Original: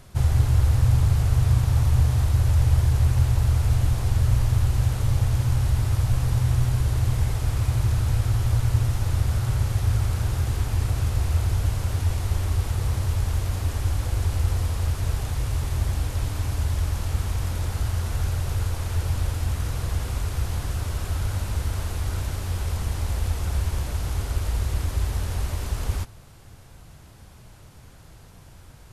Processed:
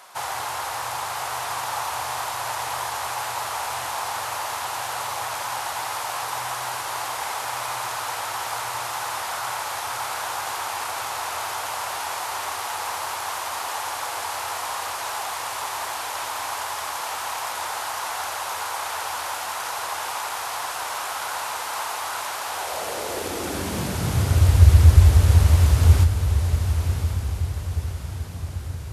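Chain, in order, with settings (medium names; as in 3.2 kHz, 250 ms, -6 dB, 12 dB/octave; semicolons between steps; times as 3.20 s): echo that smears into a reverb 1086 ms, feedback 47%, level -7 dB; high-pass sweep 890 Hz -> 78 Hz, 22.47–24.65 s; trim +6.5 dB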